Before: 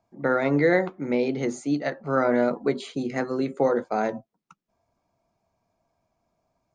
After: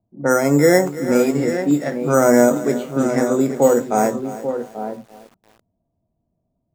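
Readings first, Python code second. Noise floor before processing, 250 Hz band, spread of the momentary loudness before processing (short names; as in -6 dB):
-79 dBFS, +8.5 dB, 8 LU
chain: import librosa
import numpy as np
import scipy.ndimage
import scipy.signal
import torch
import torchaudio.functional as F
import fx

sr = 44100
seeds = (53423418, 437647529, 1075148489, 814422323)

p1 = fx.freq_compress(x, sr, knee_hz=2500.0, ratio=1.5)
p2 = scipy.signal.sosfilt(scipy.signal.butter(4, 3700.0, 'lowpass', fs=sr, output='sos'), p1)
p3 = fx.hpss(p2, sr, part='harmonic', gain_db=8)
p4 = fx.rider(p3, sr, range_db=4, speed_s=2.0)
p5 = p4 + fx.echo_single(p4, sr, ms=836, db=-9.5, dry=0)
p6 = np.repeat(p5[::6], 6)[:len(p5)]
p7 = fx.env_lowpass(p6, sr, base_hz=320.0, full_db=-12.5)
y = fx.echo_crushed(p7, sr, ms=335, feedback_pct=35, bits=6, wet_db=-15.0)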